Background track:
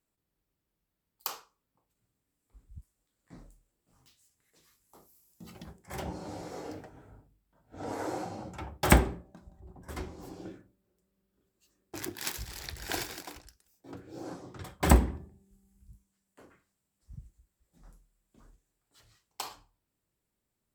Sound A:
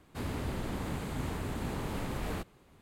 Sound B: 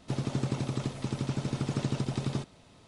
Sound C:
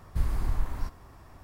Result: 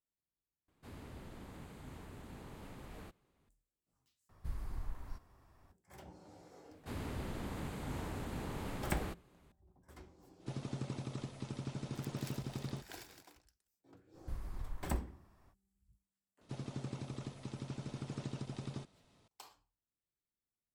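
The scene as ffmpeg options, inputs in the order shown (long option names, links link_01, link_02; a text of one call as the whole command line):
ffmpeg -i bed.wav -i cue0.wav -i cue1.wav -i cue2.wav -filter_complex "[1:a]asplit=2[link_01][link_02];[3:a]asplit=2[link_03][link_04];[2:a]asplit=2[link_05][link_06];[0:a]volume=-16.5dB,asplit=3[link_07][link_08][link_09];[link_07]atrim=end=0.684[link_10];[link_01]atrim=end=2.81,asetpts=PTS-STARTPTS,volume=-15dB[link_11];[link_08]atrim=start=3.486:end=4.294[link_12];[link_03]atrim=end=1.43,asetpts=PTS-STARTPTS,volume=-14dB[link_13];[link_09]atrim=start=5.716[link_14];[link_02]atrim=end=2.81,asetpts=PTS-STARTPTS,volume=-6dB,afade=type=in:duration=0.004:curve=hsin,afade=type=out:start_time=2.806:duration=0.004:curve=hsin,adelay=6710[link_15];[link_05]atrim=end=2.87,asetpts=PTS-STARTPTS,volume=-10.5dB,afade=type=in:duration=0.05,afade=type=out:start_time=2.82:duration=0.05,adelay=10380[link_16];[link_04]atrim=end=1.43,asetpts=PTS-STARTPTS,volume=-15.5dB,afade=type=in:duration=0.05,afade=type=out:start_time=1.38:duration=0.05,adelay=622692S[link_17];[link_06]atrim=end=2.87,asetpts=PTS-STARTPTS,volume=-12dB,afade=type=in:duration=0.004:curve=hsin,afade=type=out:start_time=2.866:duration=0.004:curve=hsin,adelay=16410[link_18];[link_10][link_11]acrossfade=duration=0.004:curve1=hsin:curve2=hsin[link_19];[link_19][link_12]acrossfade=duration=0.004:curve1=hsin:curve2=hsin[link_20];[link_20][link_13]acrossfade=duration=0.004:curve1=hsin:curve2=hsin[link_21];[link_21][link_14]acrossfade=duration=0.004:curve1=hsin:curve2=hsin[link_22];[link_22][link_15][link_16][link_17][link_18]amix=inputs=5:normalize=0" out.wav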